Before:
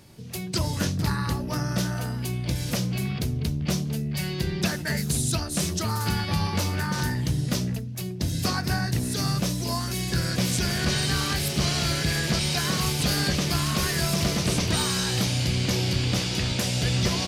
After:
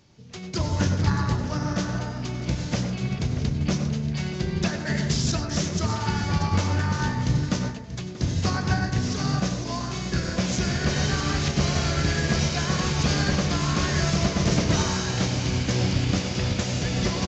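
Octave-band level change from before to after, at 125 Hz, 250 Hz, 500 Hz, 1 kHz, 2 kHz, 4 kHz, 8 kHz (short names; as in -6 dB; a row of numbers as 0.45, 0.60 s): +1.5, +2.0, +2.0, +2.0, 0.0, -3.0, -2.5 dB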